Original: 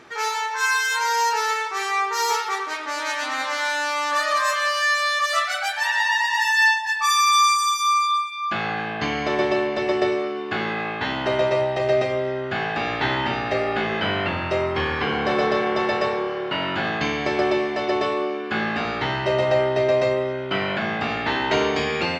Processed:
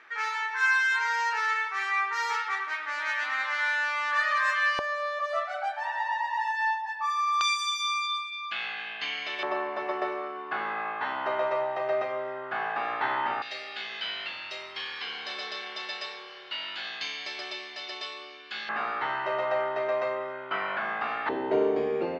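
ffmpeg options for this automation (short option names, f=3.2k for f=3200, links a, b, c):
-af "asetnsamples=n=441:p=0,asendcmd='4.79 bandpass f 650;7.41 bandpass f 3000;9.43 bandpass f 1100;13.42 bandpass f 4200;18.69 bandpass f 1200;21.29 bandpass f 430',bandpass=f=1.8k:t=q:w=1.8:csg=0"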